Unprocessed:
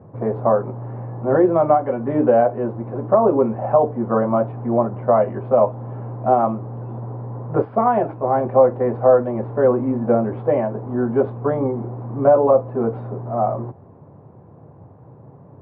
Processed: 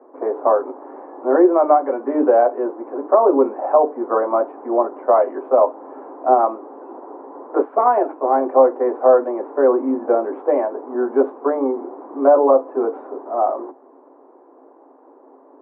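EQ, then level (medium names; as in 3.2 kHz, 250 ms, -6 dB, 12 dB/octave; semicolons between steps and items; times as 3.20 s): rippled Chebyshev high-pass 260 Hz, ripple 3 dB; low-pass 1.8 kHz 12 dB/octave; +3.5 dB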